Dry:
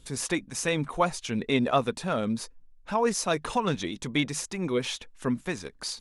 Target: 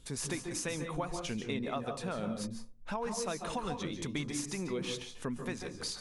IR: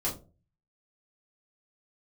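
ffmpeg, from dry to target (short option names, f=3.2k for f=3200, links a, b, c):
-filter_complex "[0:a]acompressor=threshold=-31dB:ratio=6,asplit=2[a][b];[1:a]atrim=start_sample=2205,adelay=137[c];[b][c]afir=irnorm=-1:irlink=0,volume=-12dB[d];[a][d]amix=inputs=2:normalize=0,volume=-3dB"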